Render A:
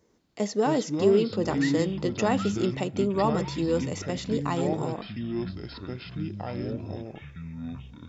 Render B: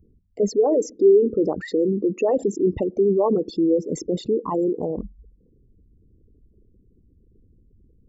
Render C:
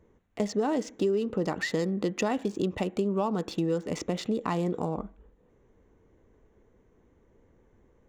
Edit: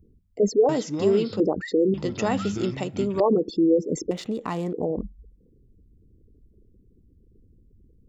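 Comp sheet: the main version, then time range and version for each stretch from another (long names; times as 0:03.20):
B
0:00.69–0:01.40: punch in from A
0:01.94–0:03.20: punch in from A
0:04.11–0:04.73: punch in from C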